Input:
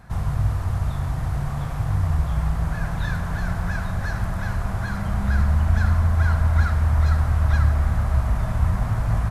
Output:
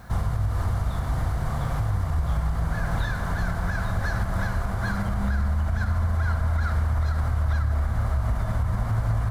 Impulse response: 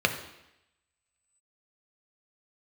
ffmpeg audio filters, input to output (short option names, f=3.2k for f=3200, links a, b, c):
-filter_complex "[0:a]asplit=2[a][b];[1:a]atrim=start_sample=2205[c];[b][c]afir=irnorm=-1:irlink=0,volume=-21.5dB[d];[a][d]amix=inputs=2:normalize=0,acrusher=bits=9:mix=0:aa=0.000001,alimiter=limit=-18.5dB:level=0:latency=1:release=167,volume=2dB"